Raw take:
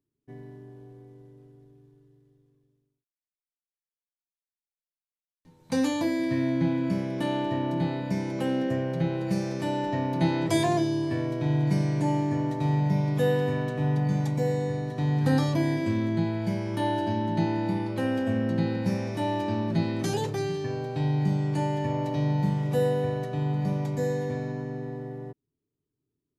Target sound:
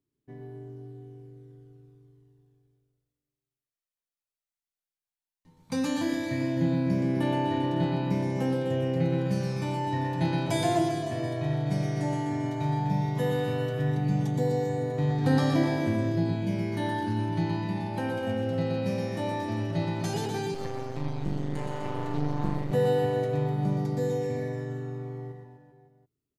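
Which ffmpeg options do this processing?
-filter_complex "[0:a]aecho=1:1:120|252|397.2|556.9|732.6:0.631|0.398|0.251|0.158|0.1,aphaser=in_gain=1:out_gain=1:delay=1.6:decay=0.29:speed=0.13:type=sinusoidal,asettb=1/sr,asplit=3[a][b][c];[a]atrim=end=20.544[d];[b]atrim=start=20.54:end=22.72,asetpts=PTS-STARTPTS,afade=t=in:d=0.004:c=qsin,afade=t=out:st=2.176:d=0.004:c=qsin,aeval=exprs='max(val(0),0)':c=same[e];[c]atrim=start=22.716[f];[d][e]acrossfade=d=0.004:c1=hsin:c2=qsin[g];[g][f]acrossfade=d=0.004:c1=qsin:c2=hsin,volume=-3.5dB"

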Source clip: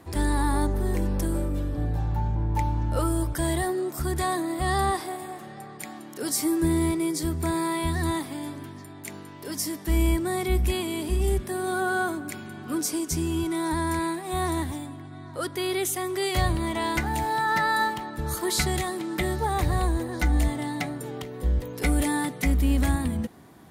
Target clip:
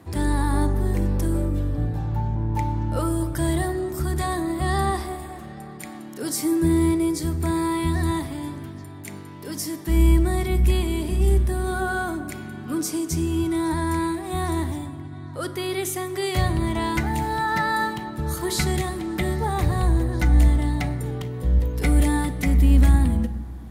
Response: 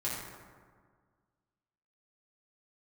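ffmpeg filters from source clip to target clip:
-filter_complex "[0:a]highpass=69,bass=f=250:g=6,treble=f=4k:g=-1,asplit=2[a][b];[1:a]atrim=start_sample=2205,lowshelf=f=66:g=11.5,adelay=34[c];[b][c]afir=irnorm=-1:irlink=0,volume=-17dB[d];[a][d]amix=inputs=2:normalize=0"

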